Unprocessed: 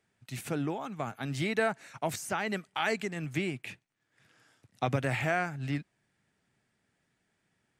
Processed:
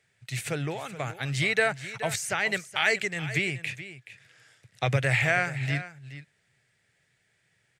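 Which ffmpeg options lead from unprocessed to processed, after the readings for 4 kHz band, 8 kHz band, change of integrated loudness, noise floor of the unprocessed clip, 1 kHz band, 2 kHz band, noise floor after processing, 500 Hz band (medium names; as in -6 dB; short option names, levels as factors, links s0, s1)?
+8.0 dB, +7.5 dB, +5.5 dB, -78 dBFS, +1.0 dB, +9.0 dB, -71 dBFS, +2.5 dB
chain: -filter_complex "[0:a]equalizer=f=125:t=o:w=1:g=9,equalizer=f=250:t=o:w=1:g=-10,equalizer=f=500:t=o:w=1:g=6,equalizer=f=1000:t=o:w=1:g=-4,equalizer=f=2000:t=o:w=1:g=10,equalizer=f=4000:t=o:w=1:g=5,equalizer=f=8000:t=o:w=1:g=7,asplit=2[s0][s1];[s1]aecho=0:1:426:0.2[s2];[s0][s2]amix=inputs=2:normalize=0"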